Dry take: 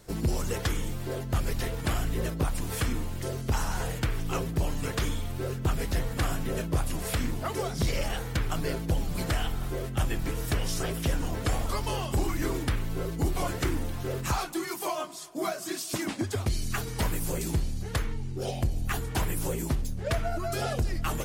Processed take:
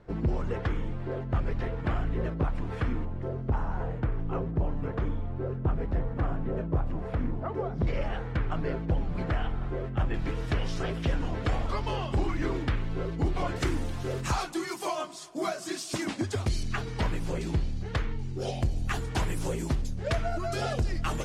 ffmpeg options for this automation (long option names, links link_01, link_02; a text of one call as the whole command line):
ffmpeg -i in.wav -af "asetnsamples=nb_out_samples=441:pad=0,asendcmd='3.05 lowpass f 1100;7.87 lowpass f 1900;10.14 lowpass f 3400;13.56 lowpass f 7800;16.63 lowpass f 3900;18.19 lowpass f 6900',lowpass=1800" out.wav